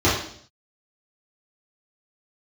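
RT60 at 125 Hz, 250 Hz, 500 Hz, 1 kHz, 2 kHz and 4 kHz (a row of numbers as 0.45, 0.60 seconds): 0.70, 0.65, 0.65, 0.55, 0.55, 0.65 seconds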